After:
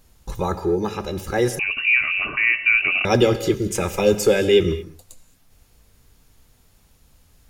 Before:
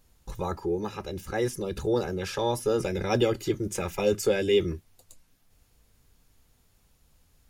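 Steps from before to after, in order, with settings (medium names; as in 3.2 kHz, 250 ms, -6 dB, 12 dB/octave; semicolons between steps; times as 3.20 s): gated-style reverb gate 250 ms flat, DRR 11.5 dB; 1.59–3.05 s: frequency inversion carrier 2.8 kHz; trim +7.5 dB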